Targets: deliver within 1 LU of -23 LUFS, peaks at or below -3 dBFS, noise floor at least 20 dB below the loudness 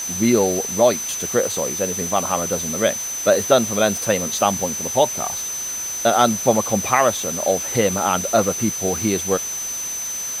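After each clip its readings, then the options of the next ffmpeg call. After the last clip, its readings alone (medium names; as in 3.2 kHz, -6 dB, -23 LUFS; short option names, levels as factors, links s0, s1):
steady tone 6.1 kHz; tone level -25 dBFS; noise floor -27 dBFS; noise floor target -40 dBFS; loudness -19.5 LUFS; peak level -1.5 dBFS; loudness target -23.0 LUFS
-> -af "bandreject=f=6100:w=30"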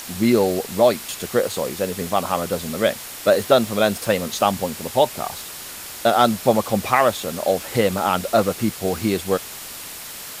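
steady tone not found; noise floor -35 dBFS; noise floor target -41 dBFS
-> -af "afftdn=nr=6:nf=-35"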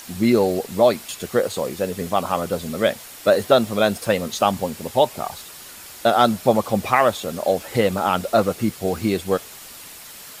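noise floor -40 dBFS; noise floor target -41 dBFS
-> -af "afftdn=nr=6:nf=-40"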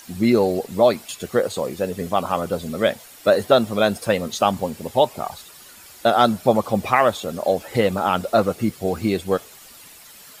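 noise floor -45 dBFS; loudness -21.0 LUFS; peak level -2.0 dBFS; loudness target -23.0 LUFS
-> -af "volume=0.794"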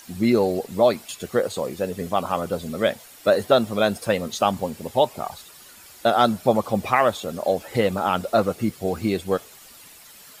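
loudness -23.0 LUFS; peak level -4.0 dBFS; noise floor -47 dBFS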